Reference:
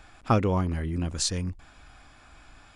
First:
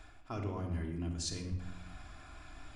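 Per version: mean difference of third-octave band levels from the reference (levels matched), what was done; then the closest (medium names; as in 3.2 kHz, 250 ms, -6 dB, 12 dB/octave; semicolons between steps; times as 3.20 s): 7.5 dB: dynamic bell 5.5 kHz, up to +5 dB, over -44 dBFS, Q 1.1; reverse; compression 6:1, threshold -36 dBFS, peak gain reduction 18 dB; reverse; simulated room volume 3300 m³, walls furnished, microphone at 3.1 m; trim -3.5 dB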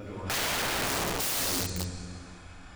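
16.0 dB: on a send: reverse echo 361 ms -14 dB; on the sum: plate-style reverb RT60 2.4 s, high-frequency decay 0.8×, DRR -8 dB; integer overflow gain 19 dB; trim -6 dB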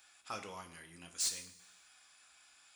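10.0 dB: differentiator; saturation -30 dBFS, distortion -8 dB; two-slope reverb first 0.51 s, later 1.5 s, from -15 dB, DRR 4.5 dB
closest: first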